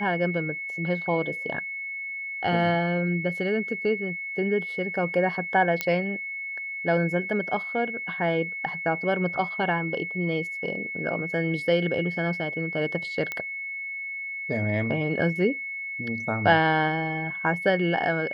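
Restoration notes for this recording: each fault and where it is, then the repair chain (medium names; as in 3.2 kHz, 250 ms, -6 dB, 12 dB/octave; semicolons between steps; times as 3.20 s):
whine 2.2 kHz -31 dBFS
5.81 s: pop -10 dBFS
13.32 s: pop -16 dBFS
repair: de-click; band-stop 2.2 kHz, Q 30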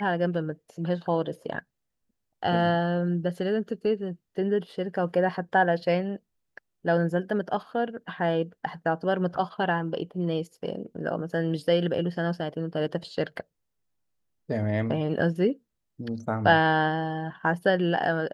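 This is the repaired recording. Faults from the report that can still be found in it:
nothing left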